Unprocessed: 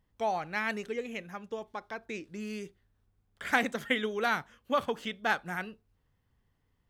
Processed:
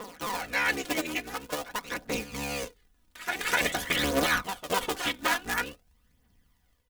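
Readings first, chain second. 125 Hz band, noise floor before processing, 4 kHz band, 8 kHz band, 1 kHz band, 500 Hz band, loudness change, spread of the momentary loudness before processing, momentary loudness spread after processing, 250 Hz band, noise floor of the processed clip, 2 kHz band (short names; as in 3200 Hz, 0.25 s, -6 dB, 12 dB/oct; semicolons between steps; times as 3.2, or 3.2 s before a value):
+5.0 dB, -75 dBFS, +9.0 dB, +15.5 dB, +1.5 dB, +0.5 dB, +4.0 dB, 12 LU, 9 LU, +2.5 dB, -68 dBFS, +4.0 dB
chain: cycle switcher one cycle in 3, inverted; high shelf 2700 Hz +10 dB; reverse echo 0.255 s -12.5 dB; phaser 0.48 Hz, delay 3.4 ms, feedback 49%; comb 4.1 ms, depth 51%; limiter -14.5 dBFS, peak gain reduction 8.5 dB; AGC gain up to 7.5 dB; gain -6 dB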